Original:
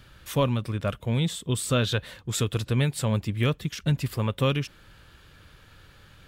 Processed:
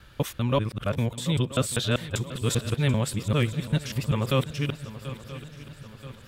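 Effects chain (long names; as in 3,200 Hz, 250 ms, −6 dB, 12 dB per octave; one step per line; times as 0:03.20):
reversed piece by piece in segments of 196 ms
feedback echo with a long and a short gap by turns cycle 979 ms, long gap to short 3 to 1, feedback 49%, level −15 dB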